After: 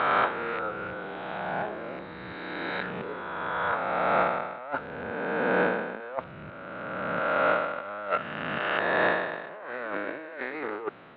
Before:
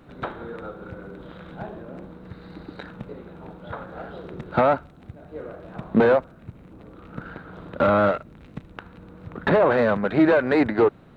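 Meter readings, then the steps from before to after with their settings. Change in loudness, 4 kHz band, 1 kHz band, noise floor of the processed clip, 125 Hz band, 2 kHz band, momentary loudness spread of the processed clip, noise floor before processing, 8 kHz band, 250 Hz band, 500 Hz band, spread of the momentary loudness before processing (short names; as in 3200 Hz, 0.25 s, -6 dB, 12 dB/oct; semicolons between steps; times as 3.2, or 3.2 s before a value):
-8.5 dB, +2.0 dB, 0.0 dB, -42 dBFS, -10.0 dB, +2.0 dB, 13 LU, -49 dBFS, n/a, -11.5 dB, -7.0 dB, 22 LU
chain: spectral swells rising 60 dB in 2.50 s; HPF 1100 Hz 6 dB/oct; negative-ratio compressor -29 dBFS, ratio -0.5; LPF 3200 Hz 24 dB/oct; gain +2 dB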